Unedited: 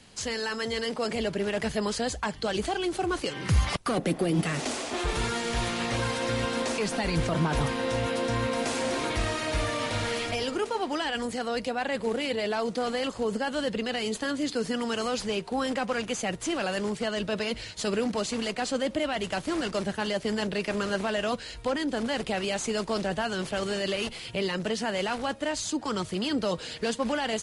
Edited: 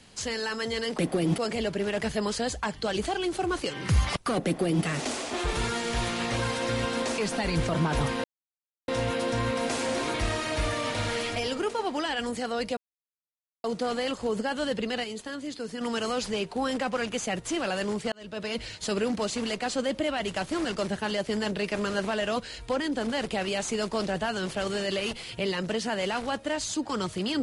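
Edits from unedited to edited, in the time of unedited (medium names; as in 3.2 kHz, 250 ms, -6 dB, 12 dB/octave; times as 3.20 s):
4.05–4.45 s: copy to 0.98 s
7.84 s: insert silence 0.64 s
11.73–12.60 s: mute
14.00–14.77 s: gain -6.5 dB
17.08–17.56 s: fade in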